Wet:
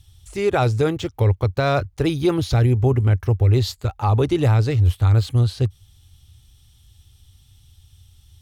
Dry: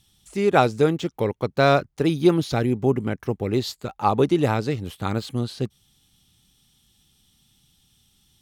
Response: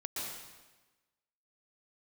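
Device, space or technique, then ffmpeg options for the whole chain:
car stereo with a boomy subwoofer: -af "lowshelf=f=130:t=q:w=3:g=12,alimiter=limit=0.251:level=0:latency=1:release=11,volume=1.33"

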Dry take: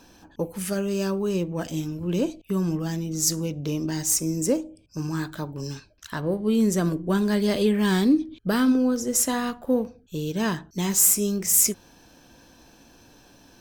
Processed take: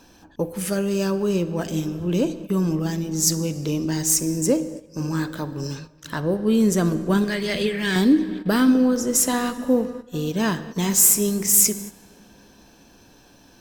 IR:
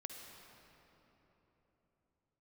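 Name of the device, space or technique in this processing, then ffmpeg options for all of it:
keyed gated reverb: -filter_complex "[0:a]asettb=1/sr,asplit=3[s0][s1][s2];[s0]atrim=end=7.244[s3];[s1]atrim=start=7.24:end=7.96,asetpts=PTS-STARTPTS,afade=t=in:d=0.004:c=qsin,afade=t=out:st=0.716:d=0.004:c=qsin,equalizer=f=250:t=o:w=1:g=-11,equalizer=f=1000:t=o:w=1:g=-11,equalizer=f=2000:t=o:w=1:g=8,equalizer=f=16000:t=o:w=1:g=-7[s4];[s2]atrim=start=7.956[s5];[s3][s4]acrossfade=d=0.004:c1=hsin:c2=qsin[s6];[s6][s5]acrossfade=d=0.004:c1=qsin:c2=hsin,asplit=3[s7][s8][s9];[1:a]atrim=start_sample=2205[s10];[s8][s10]afir=irnorm=-1:irlink=0[s11];[s9]apad=whole_len=599920[s12];[s11][s12]sidechaingate=range=0.282:threshold=0.00562:ratio=16:detection=peak,volume=0.75[s13];[s7][s13]amix=inputs=2:normalize=0"

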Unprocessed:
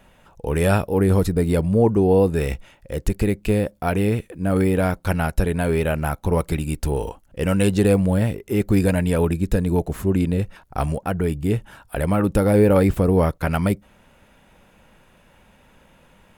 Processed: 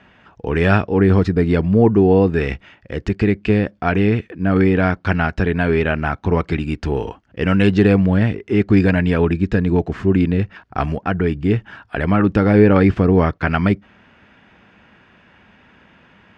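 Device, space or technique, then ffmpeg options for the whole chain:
guitar cabinet: -af "highpass=92,equalizer=f=150:t=q:w=4:g=-5,equalizer=f=540:t=q:w=4:g=-9,equalizer=f=890:t=q:w=4:g=-4,equalizer=f=1700:t=q:w=4:g=4,equalizer=f=3900:t=q:w=4:g=-6,lowpass=f=4600:w=0.5412,lowpass=f=4600:w=1.3066,volume=2"

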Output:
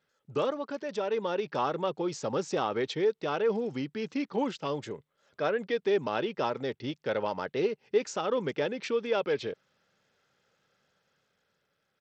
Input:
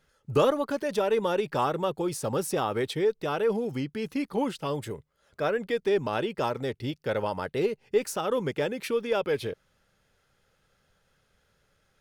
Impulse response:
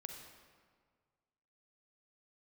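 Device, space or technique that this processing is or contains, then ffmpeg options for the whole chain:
Bluetooth headset: -af "highpass=160,dynaudnorm=f=300:g=9:m=1.88,aresample=16000,aresample=44100,volume=0.447" -ar 32000 -c:a sbc -b:a 64k

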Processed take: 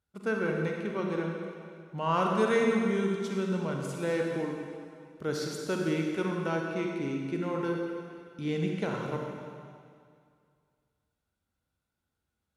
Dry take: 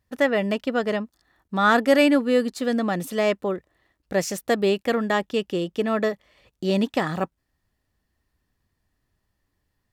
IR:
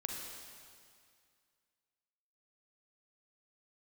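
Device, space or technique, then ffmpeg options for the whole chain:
slowed and reverbed: -filter_complex "[0:a]asetrate=34839,aresample=44100[s0];[1:a]atrim=start_sample=2205[s1];[s0][s1]afir=irnorm=-1:irlink=0,highpass=63,volume=0.376"

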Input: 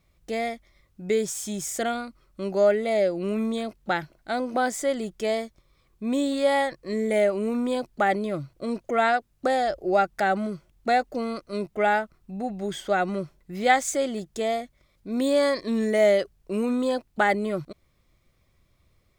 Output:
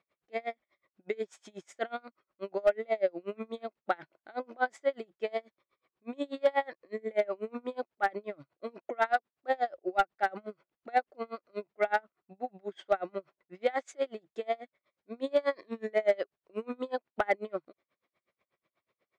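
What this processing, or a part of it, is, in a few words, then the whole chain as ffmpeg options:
helicopter radio: -af "highpass=400,lowpass=2600,aeval=exprs='val(0)*pow(10,-31*(0.5-0.5*cos(2*PI*8.2*n/s))/20)':c=same,asoftclip=type=hard:threshold=0.15"

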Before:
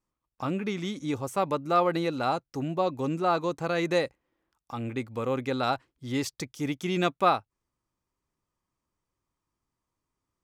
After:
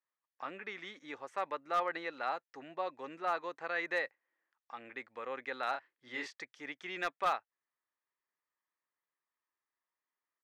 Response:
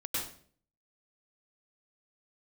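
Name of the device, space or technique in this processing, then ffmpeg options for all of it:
megaphone: -filter_complex "[0:a]highpass=560,lowpass=3700,equalizer=f=1800:t=o:w=0.46:g=12,asoftclip=type=hard:threshold=0.168,asplit=3[s0][s1][s2];[s0]afade=t=out:st=5.73:d=0.02[s3];[s1]asplit=2[s4][s5];[s5]adelay=32,volume=0.631[s6];[s4][s6]amix=inputs=2:normalize=0,afade=t=in:st=5.73:d=0.02,afade=t=out:st=6.34:d=0.02[s7];[s2]afade=t=in:st=6.34:d=0.02[s8];[s3][s7][s8]amix=inputs=3:normalize=0,volume=0.376"

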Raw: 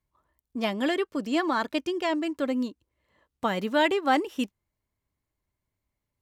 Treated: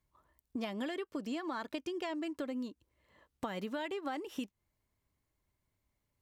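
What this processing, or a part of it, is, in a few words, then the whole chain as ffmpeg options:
serial compression, leveller first: -af "acompressor=threshold=0.0562:ratio=3,acompressor=threshold=0.0141:ratio=6,volume=1.12"

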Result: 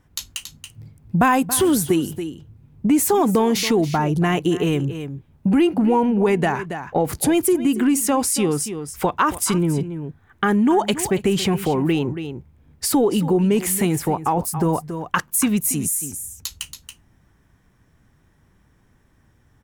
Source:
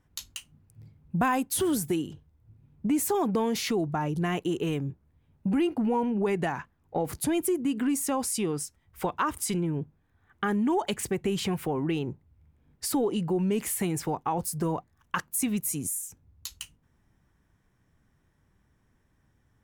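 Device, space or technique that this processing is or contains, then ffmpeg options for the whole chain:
ducked delay: -filter_complex "[0:a]asplit=3[s0][s1][s2];[s1]adelay=279,volume=0.376[s3];[s2]apad=whole_len=878292[s4];[s3][s4]sidechaincompress=threshold=0.0251:ratio=8:attack=30:release=354[s5];[s0][s5]amix=inputs=2:normalize=0,asettb=1/sr,asplit=3[s6][s7][s8];[s6]atrim=end=13.964[s9];[s7]atrim=start=13.96:end=14.69,asetpts=PTS-STARTPTS,afade=t=in:d=0.004:c=qsin,afade=t=out:st=0.726:d=0.004:c=qsin,equalizer=f=5500:t=o:w=2.7:g=-4.5[s10];[s8]atrim=start=14.686[s11];[s9][s10]acrossfade=d=0.004:c1=hsin:c2=qsin[s12];[s12][s11]acrossfade=d=0.004:c1=qsin:c2=hsin,volume=2.82"

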